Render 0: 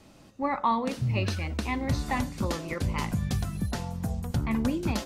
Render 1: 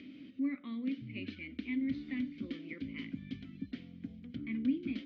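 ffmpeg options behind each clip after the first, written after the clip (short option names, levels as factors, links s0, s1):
-filter_complex "[0:a]lowpass=f=4600:w=0.5412,lowpass=f=4600:w=1.3066,acompressor=mode=upward:threshold=0.0316:ratio=2.5,asplit=3[s0][s1][s2];[s0]bandpass=f=270:t=q:w=8,volume=1[s3];[s1]bandpass=f=2290:t=q:w=8,volume=0.501[s4];[s2]bandpass=f=3010:t=q:w=8,volume=0.355[s5];[s3][s4][s5]amix=inputs=3:normalize=0,volume=1.12"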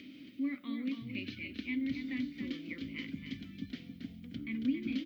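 -af "aemphasis=mode=production:type=75fm,aecho=1:1:275:0.447"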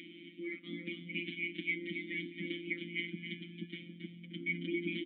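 -filter_complex "[0:a]afftfilt=real='hypot(re,im)*cos(PI*b)':imag='0':win_size=1024:overlap=0.75,asplit=3[s0][s1][s2];[s0]bandpass=f=270:t=q:w=8,volume=1[s3];[s1]bandpass=f=2290:t=q:w=8,volume=0.501[s4];[s2]bandpass=f=3010:t=q:w=8,volume=0.355[s5];[s3][s4][s5]amix=inputs=3:normalize=0,aresample=8000,aresample=44100,volume=7.94"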